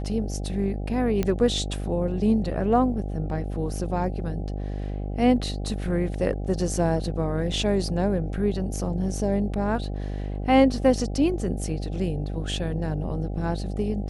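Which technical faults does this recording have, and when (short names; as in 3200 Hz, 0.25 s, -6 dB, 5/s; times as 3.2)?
buzz 50 Hz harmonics 16 -30 dBFS
1.23 pop -12 dBFS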